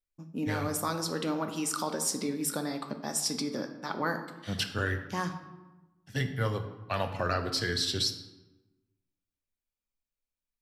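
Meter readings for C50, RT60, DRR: 9.5 dB, 1.1 s, 5.5 dB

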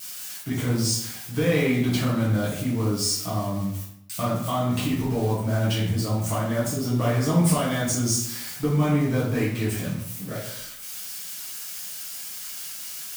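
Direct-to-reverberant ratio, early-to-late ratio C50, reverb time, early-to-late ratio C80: −9.0 dB, 3.0 dB, 0.75 s, 6.0 dB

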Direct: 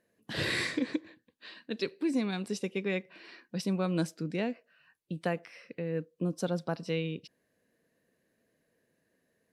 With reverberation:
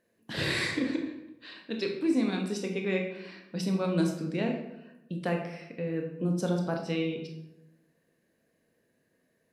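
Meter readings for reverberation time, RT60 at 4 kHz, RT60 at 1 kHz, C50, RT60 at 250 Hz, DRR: 0.90 s, 0.60 s, 0.85 s, 5.5 dB, 1.1 s, 2.0 dB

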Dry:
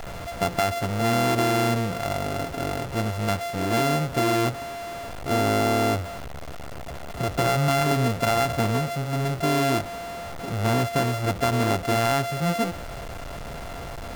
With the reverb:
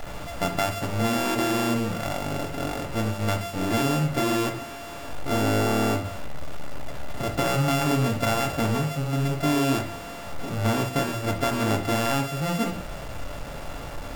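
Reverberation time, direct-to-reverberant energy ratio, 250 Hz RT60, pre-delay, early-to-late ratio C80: 0.50 s, 3.5 dB, 0.55 s, 3 ms, 15.5 dB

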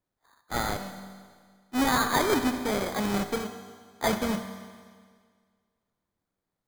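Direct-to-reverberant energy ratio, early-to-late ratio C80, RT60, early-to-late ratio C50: 7.5 dB, 10.0 dB, 1.8 s, 8.5 dB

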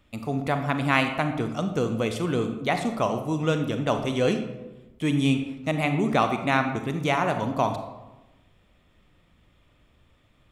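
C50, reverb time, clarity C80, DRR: 8.0 dB, 1.1 s, 10.5 dB, 6.5 dB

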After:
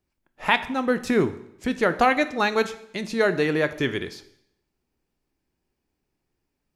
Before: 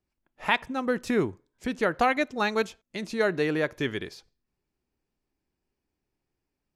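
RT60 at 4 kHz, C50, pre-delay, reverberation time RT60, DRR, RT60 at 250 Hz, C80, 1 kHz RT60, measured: 0.70 s, 15.0 dB, 5 ms, 0.75 s, 11.5 dB, 0.75 s, 17.0 dB, 0.75 s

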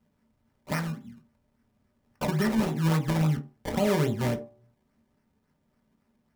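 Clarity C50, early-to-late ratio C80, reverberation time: 13.5 dB, 18.5 dB, 0.45 s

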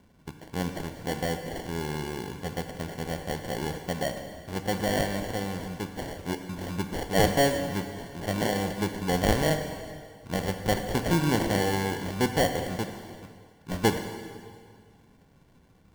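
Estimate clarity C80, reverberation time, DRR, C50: 8.0 dB, 2.0 s, 6.0 dB, 7.0 dB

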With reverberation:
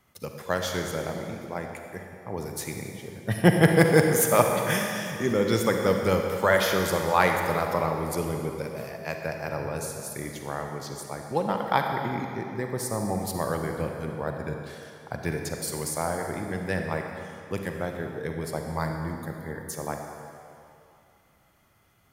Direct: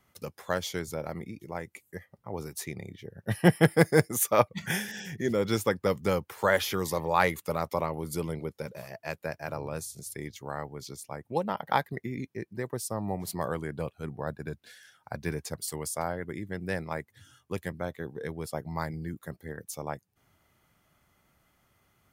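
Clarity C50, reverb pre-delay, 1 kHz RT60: 3.5 dB, 37 ms, 2.7 s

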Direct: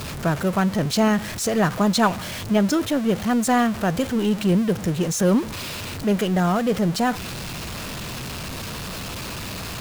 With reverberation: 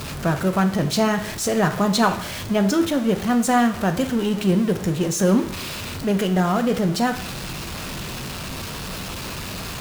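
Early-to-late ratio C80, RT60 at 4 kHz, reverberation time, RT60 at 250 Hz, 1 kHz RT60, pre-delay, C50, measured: 15.0 dB, 0.55 s, 0.55 s, 0.60 s, 0.55 s, 5 ms, 12.0 dB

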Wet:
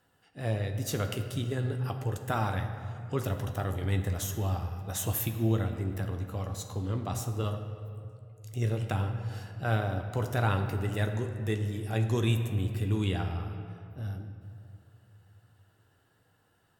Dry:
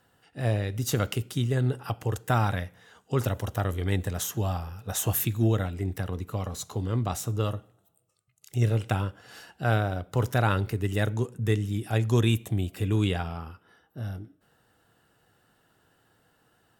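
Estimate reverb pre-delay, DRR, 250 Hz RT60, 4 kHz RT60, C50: 10 ms, 5.0 dB, 2.6 s, 1.5 s, 7.5 dB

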